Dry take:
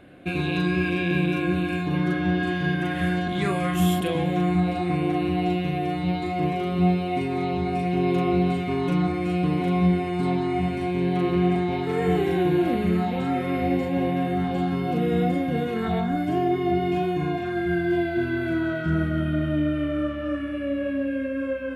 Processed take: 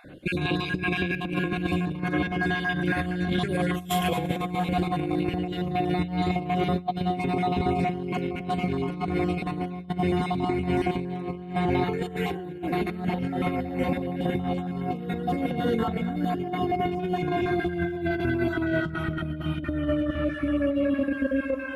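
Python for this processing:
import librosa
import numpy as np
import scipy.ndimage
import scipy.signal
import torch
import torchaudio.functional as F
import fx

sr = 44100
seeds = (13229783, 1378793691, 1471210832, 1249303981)

y = fx.spec_dropout(x, sr, seeds[0], share_pct=31)
y = fx.low_shelf(y, sr, hz=110.0, db=5.0)
y = fx.echo_heads(y, sr, ms=117, heads='first and second', feedback_pct=66, wet_db=-16)
y = fx.over_compress(y, sr, threshold_db=-26.0, ratio=-0.5)
y = fx.peak_eq(y, sr, hz=880.0, db=2.0, octaves=0.77)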